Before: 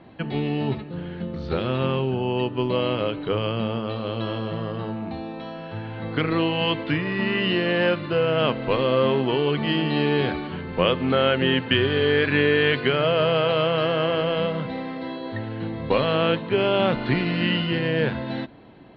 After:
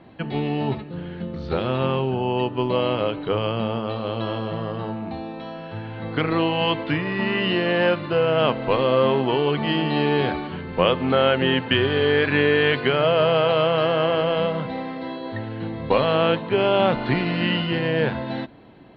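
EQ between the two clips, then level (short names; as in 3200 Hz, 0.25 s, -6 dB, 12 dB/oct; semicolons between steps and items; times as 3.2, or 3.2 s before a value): dynamic EQ 810 Hz, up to +5 dB, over -37 dBFS, Q 1.4; 0.0 dB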